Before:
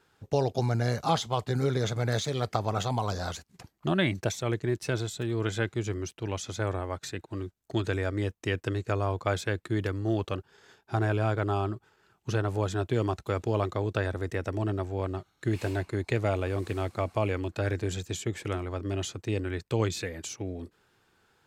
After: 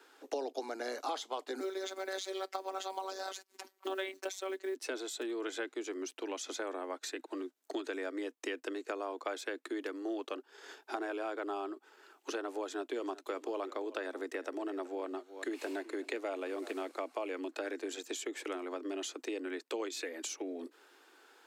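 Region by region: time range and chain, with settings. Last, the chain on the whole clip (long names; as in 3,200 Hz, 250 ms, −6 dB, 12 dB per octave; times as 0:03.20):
0:01.60–0:04.75: phases set to zero 191 Hz + floating-point word with a short mantissa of 4 bits
0:12.60–0:16.91: floating-point word with a short mantissa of 8 bits + single-tap delay 374 ms −19 dB
whole clip: Butterworth high-pass 260 Hz 96 dB per octave; downward compressor 3 to 1, threshold −46 dBFS; level +6 dB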